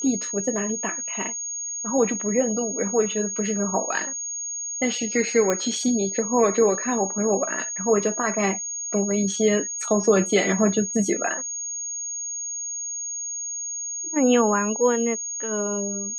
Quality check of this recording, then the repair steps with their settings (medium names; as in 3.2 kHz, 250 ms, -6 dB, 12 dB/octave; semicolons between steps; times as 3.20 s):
whine 6.6 kHz -28 dBFS
5.50 s: pop -9 dBFS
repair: de-click; band-stop 6.6 kHz, Q 30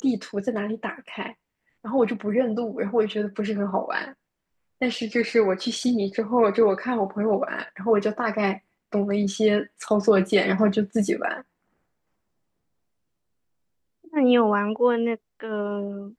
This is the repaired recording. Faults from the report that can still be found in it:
nothing left